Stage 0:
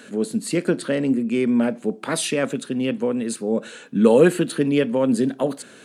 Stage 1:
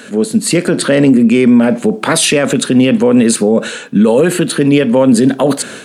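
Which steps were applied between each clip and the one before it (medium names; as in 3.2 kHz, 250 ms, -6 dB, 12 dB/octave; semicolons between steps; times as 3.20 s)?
level rider gain up to 11.5 dB; peaking EQ 320 Hz -2.5 dB; loudness maximiser +12 dB; trim -1 dB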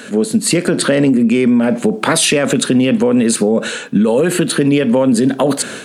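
compression, threshold -10 dBFS, peak gain reduction 5.5 dB; trim +1 dB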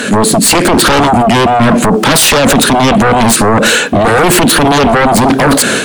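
peak limiter -9 dBFS, peak gain reduction 7 dB; sine folder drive 8 dB, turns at -9 dBFS; trim +5 dB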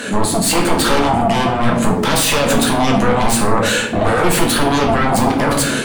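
simulated room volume 86 m³, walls mixed, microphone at 0.78 m; trim -10.5 dB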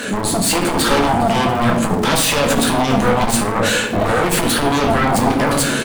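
single-diode clipper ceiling -12.5 dBFS; feedback delay 407 ms, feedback 56%, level -21 dB; crackle 200 per s -25 dBFS; trim +1 dB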